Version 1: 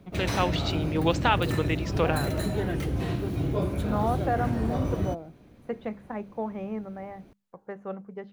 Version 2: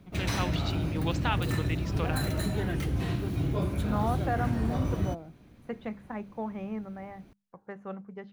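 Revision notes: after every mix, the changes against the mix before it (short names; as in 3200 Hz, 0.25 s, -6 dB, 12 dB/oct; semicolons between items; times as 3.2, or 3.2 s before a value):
first voice -5.5 dB; master: add bell 500 Hz -5.5 dB 1.5 oct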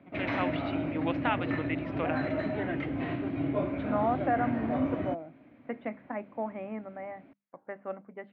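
master: add speaker cabinet 180–2700 Hz, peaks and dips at 190 Hz -8 dB, 270 Hz +9 dB, 420 Hz -4 dB, 620 Hz +8 dB, 2100 Hz +5 dB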